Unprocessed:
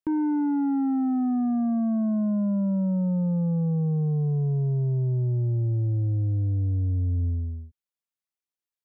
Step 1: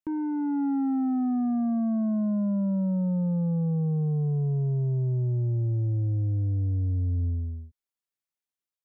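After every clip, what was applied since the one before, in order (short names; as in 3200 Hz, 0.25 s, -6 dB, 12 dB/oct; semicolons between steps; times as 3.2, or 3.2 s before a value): AGC gain up to 3.5 dB; gain -5 dB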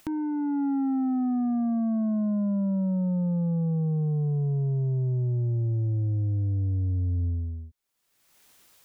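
upward compressor, threshold -32 dBFS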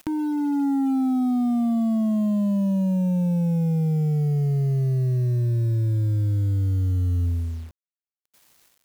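bit-crush 9-bit; gain +4 dB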